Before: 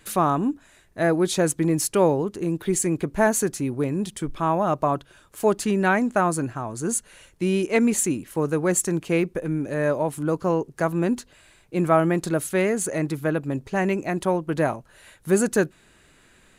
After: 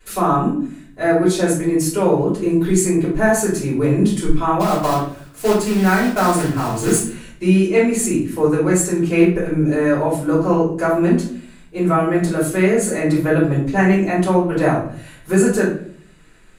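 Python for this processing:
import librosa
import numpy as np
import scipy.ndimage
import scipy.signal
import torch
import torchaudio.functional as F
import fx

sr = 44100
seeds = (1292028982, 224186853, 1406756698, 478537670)

y = fx.rider(x, sr, range_db=4, speed_s=0.5)
y = fx.quant_companded(y, sr, bits=4, at=(4.59, 6.96), fade=0.02)
y = fx.room_shoebox(y, sr, seeds[0], volume_m3=64.0, walls='mixed', distance_m=3.3)
y = F.gain(torch.from_numpy(y), -8.5).numpy()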